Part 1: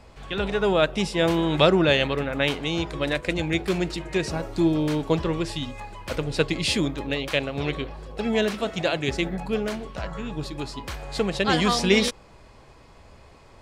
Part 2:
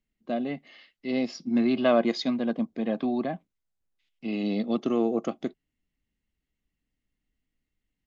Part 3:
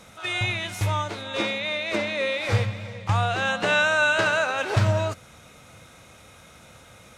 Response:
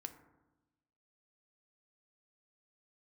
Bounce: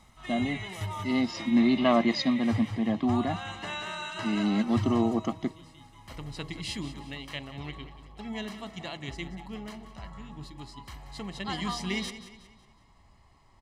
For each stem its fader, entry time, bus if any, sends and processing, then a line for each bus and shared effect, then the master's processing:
-13.0 dB, 0.00 s, no send, echo send -13.5 dB, de-hum 79.68 Hz, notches 8; auto duck -17 dB, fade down 1.30 s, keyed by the second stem
0.0 dB, 0.00 s, no send, no echo send, dry
-13.0 dB, 0.00 s, no send, echo send -5 dB, reverb removal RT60 1.6 s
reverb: off
echo: feedback echo 0.183 s, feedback 42%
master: comb 1 ms, depth 67%

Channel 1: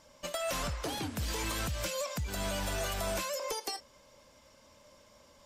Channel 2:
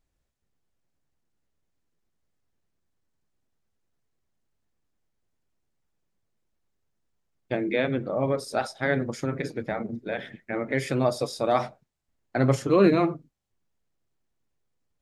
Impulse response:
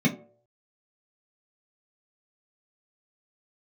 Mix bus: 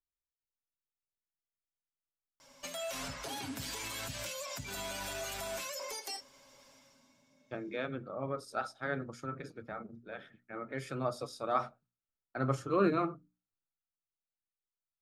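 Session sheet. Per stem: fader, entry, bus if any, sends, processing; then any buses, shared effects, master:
+1.0 dB, 2.40 s, send -23 dB, low shelf 420 Hz -10.5 dB; comb 7.3 ms, depth 58%; limiter -32.5 dBFS, peak gain reduction 8.5 dB; auto duck -18 dB, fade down 0.80 s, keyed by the second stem
-12.5 dB, 0.00 s, no send, bell 1300 Hz +13 dB 0.34 oct; notch 2000 Hz, Q 10; three-band expander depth 40%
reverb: on, RT60 0.55 s, pre-delay 3 ms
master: notches 60/120/180/240/300 Hz

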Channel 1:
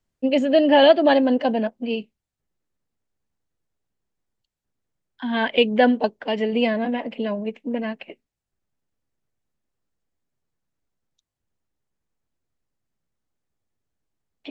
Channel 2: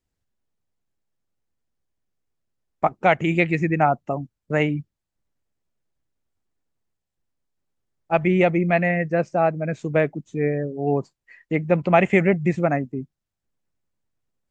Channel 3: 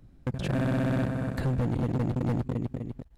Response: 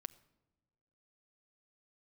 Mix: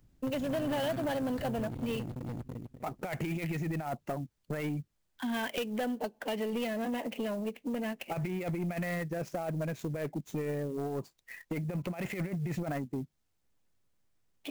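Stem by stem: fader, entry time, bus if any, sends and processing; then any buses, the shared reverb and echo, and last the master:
-4.0 dB, 0.00 s, bus A, send -22 dB, dry
-2.5 dB, 0.00 s, bus A, no send, negative-ratio compressor -22 dBFS, ratio -0.5
-11.0 dB, 0.00 s, no bus, no send, auto duck -8 dB, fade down 0.25 s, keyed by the second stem
bus A: 0.0 dB, compressor 10:1, threshold -28 dBFS, peak gain reduction 15.5 dB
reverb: on, pre-delay 6 ms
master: high shelf 5600 Hz +7.5 dB; soft clip -27.5 dBFS, distortion -14 dB; clock jitter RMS 0.021 ms

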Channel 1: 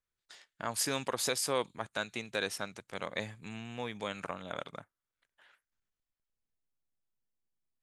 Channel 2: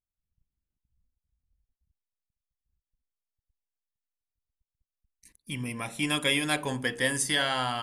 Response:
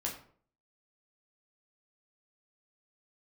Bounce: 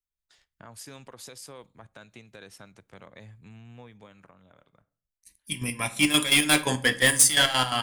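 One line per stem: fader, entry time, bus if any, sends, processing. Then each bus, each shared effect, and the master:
+1.5 dB, 0.00 s, send -20.5 dB, low shelf 140 Hz +12 dB; limiter -21.5 dBFS, peak gain reduction 4.5 dB; compressor 2.5:1, threshold -43 dBFS, peak gain reduction 10 dB; auto duck -14 dB, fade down 1.45 s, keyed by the second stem
+1.0 dB, 0.00 s, send -6.5 dB, high shelf 2400 Hz +9 dB; hard clip -19.5 dBFS, distortion -11 dB; chopper 5.7 Hz, depth 65%, duty 50%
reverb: on, RT60 0.55 s, pre-delay 9 ms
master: three-band expander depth 40%

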